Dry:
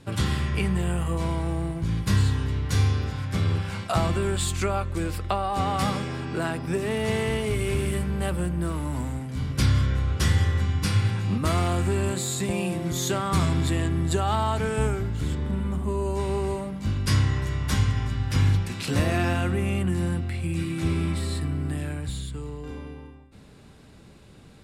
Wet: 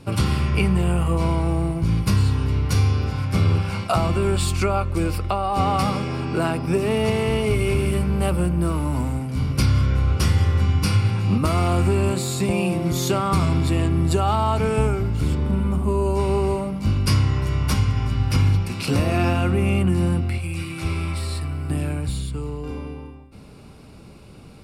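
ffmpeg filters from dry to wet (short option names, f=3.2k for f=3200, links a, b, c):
-filter_complex "[0:a]asettb=1/sr,asplit=3[a][b][c];[a]atrim=end=20.384[d];[b]atrim=start=20.38:end=21.7,asetpts=PTS-STARTPTS,afade=t=in:d=0.004:c=qsin,afade=t=out:st=1.316:d=0.004:c=qsin,equalizer=f=230:w=0.65:g=-12[e];[c]atrim=start=21.696[f];[d][e]acrossfade=d=0.004:c1=hsin:c2=qsin[g];[g][f]acrossfade=d=0.004:c1=qsin:c2=hsin,superequalizer=11b=0.447:13b=0.562:15b=0.562,alimiter=limit=-15.5dB:level=0:latency=1:release=385,adynamicequalizer=threshold=0.00398:dfrequency=6700:dqfactor=0.7:tfrequency=6700:tqfactor=0.7:attack=5:release=100:ratio=0.375:range=2:mode=cutabove:tftype=highshelf,volume=6dB"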